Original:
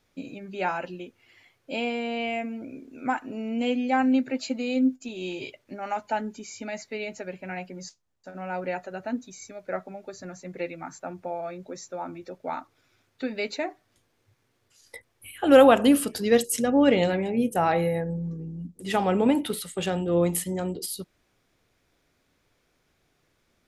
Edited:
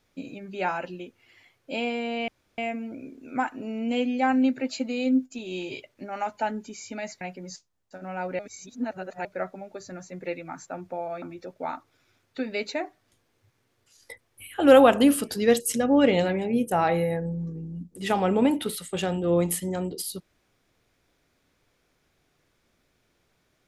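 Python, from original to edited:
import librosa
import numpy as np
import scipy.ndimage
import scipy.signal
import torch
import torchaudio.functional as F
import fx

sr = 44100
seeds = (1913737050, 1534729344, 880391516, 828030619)

y = fx.edit(x, sr, fx.insert_room_tone(at_s=2.28, length_s=0.3),
    fx.cut(start_s=6.91, length_s=0.63),
    fx.reverse_span(start_s=8.72, length_s=0.86),
    fx.cut(start_s=11.55, length_s=0.51), tone=tone)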